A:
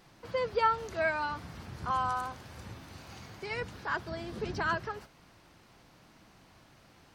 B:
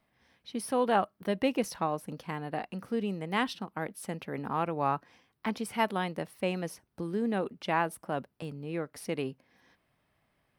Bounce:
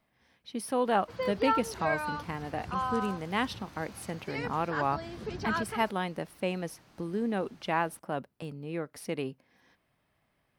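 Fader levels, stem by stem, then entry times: -1.5 dB, -0.5 dB; 0.85 s, 0.00 s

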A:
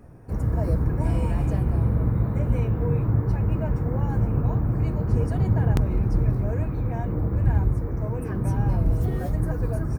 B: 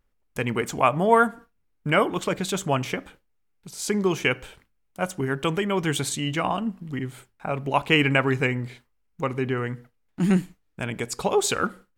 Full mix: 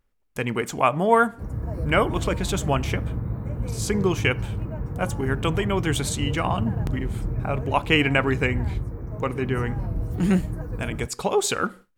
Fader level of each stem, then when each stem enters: -6.0 dB, 0.0 dB; 1.10 s, 0.00 s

